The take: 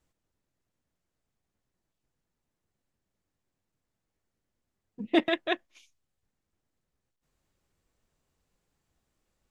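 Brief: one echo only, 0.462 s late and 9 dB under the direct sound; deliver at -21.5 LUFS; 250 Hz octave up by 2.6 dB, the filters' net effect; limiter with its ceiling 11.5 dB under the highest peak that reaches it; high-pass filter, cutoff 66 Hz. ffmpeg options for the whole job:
-af "highpass=66,equalizer=f=250:t=o:g=4,alimiter=limit=-19.5dB:level=0:latency=1,aecho=1:1:462:0.355,volume=12.5dB"

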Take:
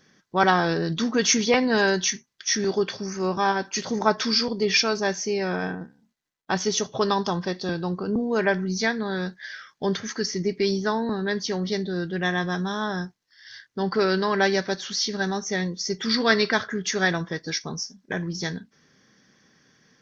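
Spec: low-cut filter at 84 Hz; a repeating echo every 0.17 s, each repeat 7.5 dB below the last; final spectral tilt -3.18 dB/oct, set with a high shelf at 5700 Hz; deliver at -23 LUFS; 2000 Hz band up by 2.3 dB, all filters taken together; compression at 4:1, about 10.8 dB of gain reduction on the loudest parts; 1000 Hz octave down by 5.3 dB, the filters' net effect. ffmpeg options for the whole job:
-af "highpass=84,equalizer=f=1k:t=o:g=-9,equalizer=f=2k:t=o:g=5.5,highshelf=f=5.7k:g=7,acompressor=threshold=-26dB:ratio=4,aecho=1:1:170|340|510|680|850:0.422|0.177|0.0744|0.0312|0.0131,volume=5.5dB"

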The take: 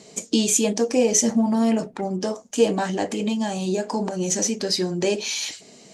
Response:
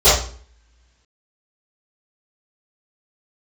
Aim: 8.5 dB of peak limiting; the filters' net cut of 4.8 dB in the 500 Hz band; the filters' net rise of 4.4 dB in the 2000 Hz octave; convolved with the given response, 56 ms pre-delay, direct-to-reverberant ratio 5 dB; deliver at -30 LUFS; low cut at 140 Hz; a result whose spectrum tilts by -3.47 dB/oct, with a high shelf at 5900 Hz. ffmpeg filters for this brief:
-filter_complex "[0:a]highpass=140,equalizer=f=500:t=o:g=-6,equalizer=f=2k:t=o:g=7,highshelf=f=5.9k:g=-7,alimiter=limit=-15.5dB:level=0:latency=1,asplit=2[a][b];[1:a]atrim=start_sample=2205,adelay=56[c];[b][c]afir=irnorm=-1:irlink=0,volume=-31dB[d];[a][d]amix=inputs=2:normalize=0,volume=-5dB"

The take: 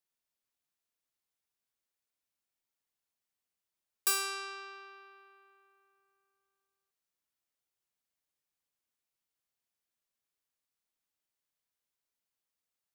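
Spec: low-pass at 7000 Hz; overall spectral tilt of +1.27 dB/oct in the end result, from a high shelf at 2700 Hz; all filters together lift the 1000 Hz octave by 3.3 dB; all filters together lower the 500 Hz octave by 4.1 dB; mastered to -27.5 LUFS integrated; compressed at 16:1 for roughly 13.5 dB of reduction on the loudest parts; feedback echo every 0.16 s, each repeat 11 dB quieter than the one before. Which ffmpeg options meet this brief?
-af "lowpass=7k,equalizer=f=500:t=o:g=-7,equalizer=f=1k:t=o:g=7,highshelf=f=2.7k:g=-8.5,acompressor=threshold=-44dB:ratio=16,aecho=1:1:160|320|480:0.282|0.0789|0.0221,volume=21.5dB"

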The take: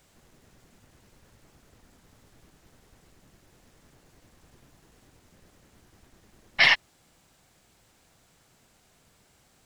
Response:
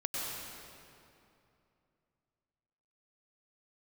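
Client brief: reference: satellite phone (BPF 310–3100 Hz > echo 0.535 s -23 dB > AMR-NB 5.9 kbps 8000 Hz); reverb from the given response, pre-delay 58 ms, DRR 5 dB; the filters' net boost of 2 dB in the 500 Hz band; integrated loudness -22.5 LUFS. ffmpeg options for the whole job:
-filter_complex "[0:a]equalizer=f=500:t=o:g=3.5,asplit=2[a][b];[1:a]atrim=start_sample=2205,adelay=58[c];[b][c]afir=irnorm=-1:irlink=0,volume=-9.5dB[d];[a][d]amix=inputs=2:normalize=0,highpass=310,lowpass=3.1k,aecho=1:1:535:0.0708,volume=6dB" -ar 8000 -c:a libopencore_amrnb -b:a 5900

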